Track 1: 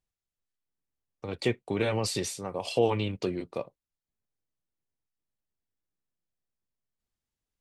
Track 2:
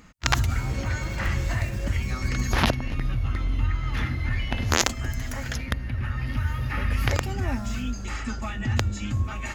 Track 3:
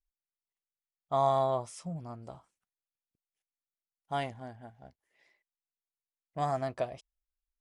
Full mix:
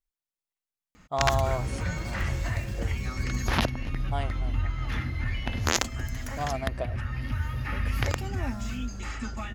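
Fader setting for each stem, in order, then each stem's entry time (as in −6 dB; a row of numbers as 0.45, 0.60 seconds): −19.5, −3.5, −0.5 decibels; 0.00, 0.95, 0.00 seconds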